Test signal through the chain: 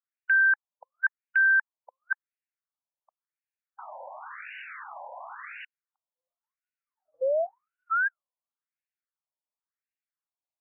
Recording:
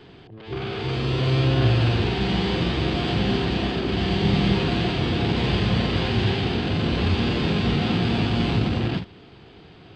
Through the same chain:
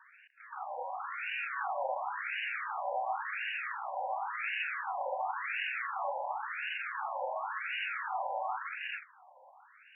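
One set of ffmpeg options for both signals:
ffmpeg -i in.wav -af "highpass=frequency=150:width_type=q:width=0.5412,highpass=frequency=150:width_type=q:width=1.307,lowpass=frequency=3400:width_type=q:width=0.5176,lowpass=frequency=3400:width_type=q:width=0.7071,lowpass=frequency=3400:width_type=q:width=1.932,afreqshift=55,afftfilt=real='re*between(b*sr/1024,720*pow(2100/720,0.5+0.5*sin(2*PI*0.93*pts/sr))/1.41,720*pow(2100/720,0.5+0.5*sin(2*PI*0.93*pts/sr))*1.41)':imag='im*between(b*sr/1024,720*pow(2100/720,0.5+0.5*sin(2*PI*0.93*pts/sr))/1.41,720*pow(2100/720,0.5+0.5*sin(2*PI*0.93*pts/sr))*1.41)':win_size=1024:overlap=0.75" out.wav

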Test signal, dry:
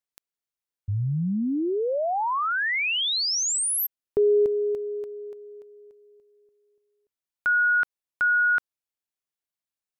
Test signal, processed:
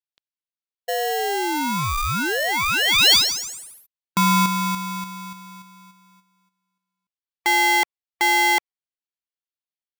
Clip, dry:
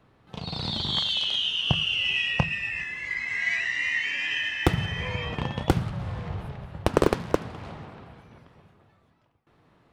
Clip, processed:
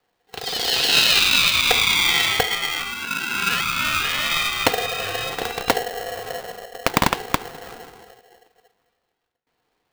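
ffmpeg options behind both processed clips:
ffmpeg -i in.wav -af "lowpass=frequency=3800:width_type=q:width=3.3,afftdn=noise_reduction=14:noise_floor=-40,aeval=exprs='val(0)*sgn(sin(2*PI*600*n/s))':channel_layout=same,volume=2dB" out.wav

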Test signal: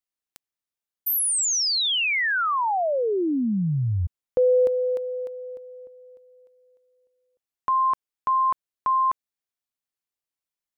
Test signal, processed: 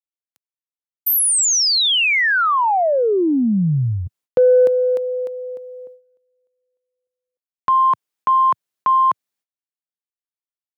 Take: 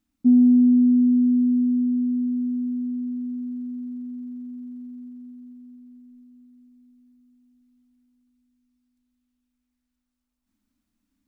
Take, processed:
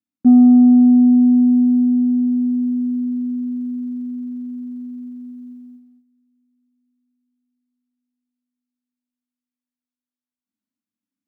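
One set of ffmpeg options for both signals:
ffmpeg -i in.wav -af "highpass=frequency=110:width=0.5412,highpass=frequency=110:width=1.3066,agate=range=-21dB:threshold=-45dB:ratio=16:release=446:detection=peak,acontrast=81" out.wav

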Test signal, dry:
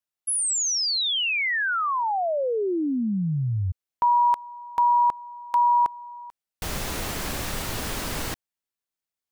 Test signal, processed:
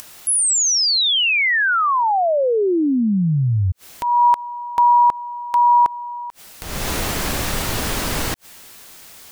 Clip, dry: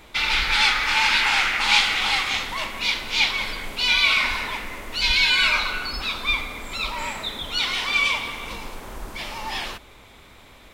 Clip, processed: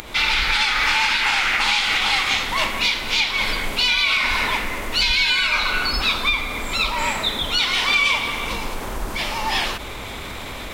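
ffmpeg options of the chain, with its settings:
ffmpeg -i in.wav -af "acompressor=mode=upward:threshold=-34dB:ratio=4:attack=8.8:release=58:knee=2.83:detection=peak,alimiter=limit=-16.5dB:level=0:latency=1:release=268,volume=7.5dB" out.wav

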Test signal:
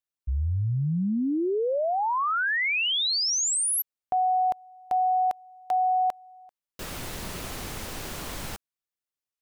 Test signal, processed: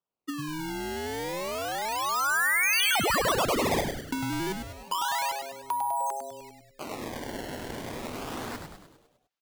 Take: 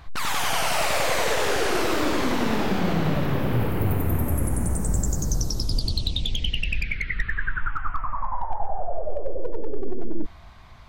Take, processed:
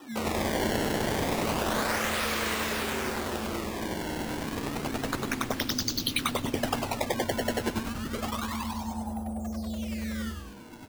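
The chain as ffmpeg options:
ffmpeg -i in.wav -filter_complex "[0:a]acrossover=split=1100[link_01][link_02];[link_01]acompressor=threshold=-34dB:ratio=5:attack=54:release=513:knee=6:detection=peak[link_03];[link_03][link_02]amix=inputs=2:normalize=0,afreqshift=220,acrusher=samples=20:mix=1:aa=0.000001:lfo=1:lforange=32:lforate=0.3,highpass=frequency=240:poles=1,asplit=8[link_04][link_05][link_06][link_07][link_08][link_09][link_10][link_11];[link_05]adelay=101,afreqshift=-140,volume=-5.5dB[link_12];[link_06]adelay=202,afreqshift=-280,volume=-10.7dB[link_13];[link_07]adelay=303,afreqshift=-420,volume=-15.9dB[link_14];[link_08]adelay=404,afreqshift=-560,volume=-21.1dB[link_15];[link_09]adelay=505,afreqshift=-700,volume=-26.3dB[link_16];[link_10]adelay=606,afreqshift=-840,volume=-31.5dB[link_17];[link_11]adelay=707,afreqshift=-980,volume=-36.7dB[link_18];[link_04][link_12][link_13][link_14][link_15][link_16][link_17][link_18]amix=inputs=8:normalize=0" out.wav

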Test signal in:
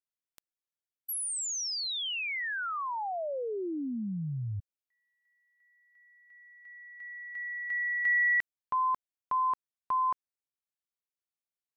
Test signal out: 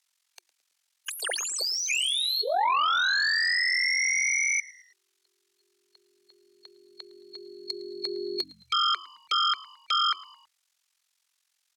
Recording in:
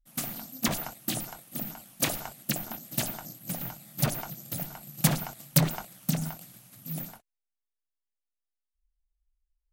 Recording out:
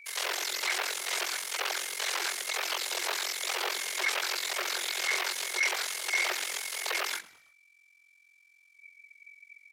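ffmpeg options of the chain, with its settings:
ffmpeg -i in.wav -filter_complex "[0:a]afftfilt=real='real(if(between(b,1,1012),(2*floor((b-1)/92)+1)*92-b,b),0)':imag='imag(if(between(b,1,1012),(2*floor((b-1)/92)+1)*92-b,b),0)*if(between(b,1,1012),-1,1)':win_size=2048:overlap=0.75,highpass=frequency=1100:poles=1,aemphasis=mode=production:type=50fm,acompressor=threshold=-30dB:ratio=12:attack=0.14:release=89:knee=6:detection=peak,aeval=exprs='val(0)*sin(2*PI*22*n/s)':channel_layout=same,aeval=exprs='0.0501*sin(PI/2*5.62*val(0)/0.0501)':channel_layout=same,afreqshift=340,lowpass=5600,asplit=2[link_01][link_02];[link_02]asplit=3[link_03][link_04][link_05];[link_03]adelay=109,afreqshift=-94,volume=-21dB[link_06];[link_04]adelay=218,afreqshift=-188,volume=-27.6dB[link_07];[link_05]adelay=327,afreqshift=-282,volume=-34.1dB[link_08];[link_06][link_07][link_08]amix=inputs=3:normalize=0[link_09];[link_01][link_09]amix=inputs=2:normalize=0,volume=5.5dB" out.wav

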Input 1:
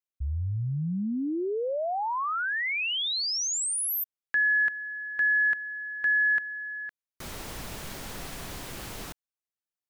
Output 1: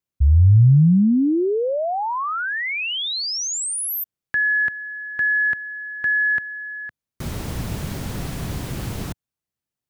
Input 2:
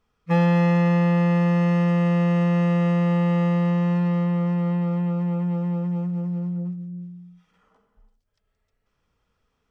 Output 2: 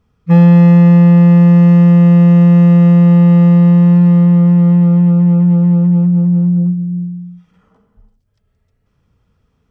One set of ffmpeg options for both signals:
ffmpeg -i in.wav -filter_complex "[0:a]equalizer=frequency=110:width=0.4:gain=14.5,asplit=2[link_01][link_02];[link_02]alimiter=limit=-10.5dB:level=0:latency=1,volume=-3dB[link_03];[link_01][link_03]amix=inputs=2:normalize=0,volume=-1dB" out.wav

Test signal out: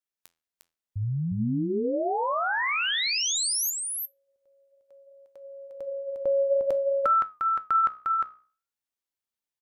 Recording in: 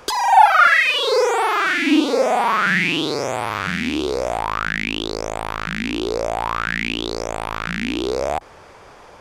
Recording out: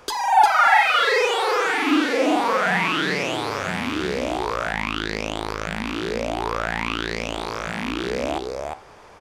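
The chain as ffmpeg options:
ffmpeg -i in.wav -filter_complex "[0:a]flanger=delay=10:depth=6.3:regen=-77:speed=0.56:shape=sinusoidal,asplit=2[link_01][link_02];[link_02]aecho=0:1:354:0.668[link_03];[link_01][link_03]amix=inputs=2:normalize=0" out.wav

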